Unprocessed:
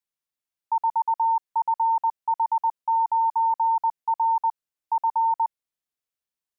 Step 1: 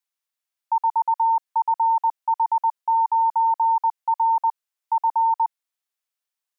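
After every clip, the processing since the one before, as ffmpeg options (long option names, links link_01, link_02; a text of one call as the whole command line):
ffmpeg -i in.wav -af "highpass=660,volume=3.5dB" out.wav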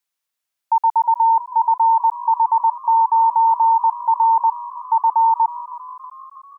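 ffmpeg -i in.wav -filter_complex "[0:a]asplit=7[link_01][link_02][link_03][link_04][link_05][link_06][link_07];[link_02]adelay=319,afreqshift=52,volume=-17dB[link_08];[link_03]adelay=638,afreqshift=104,volume=-21.2dB[link_09];[link_04]adelay=957,afreqshift=156,volume=-25.3dB[link_10];[link_05]adelay=1276,afreqshift=208,volume=-29.5dB[link_11];[link_06]adelay=1595,afreqshift=260,volume=-33.6dB[link_12];[link_07]adelay=1914,afreqshift=312,volume=-37.8dB[link_13];[link_01][link_08][link_09][link_10][link_11][link_12][link_13]amix=inputs=7:normalize=0,volume=5dB" out.wav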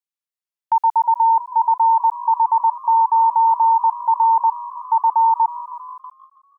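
ffmpeg -i in.wav -af "agate=range=-14dB:threshold=-36dB:ratio=16:detection=peak" out.wav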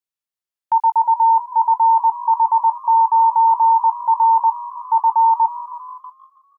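ffmpeg -i in.wav -filter_complex "[0:a]asplit=2[link_01][link_02];[link_02]adelay=20,volume=-12dB[link_03];[link_01][link_03]amix=inputs=2:normalize=0" out.wav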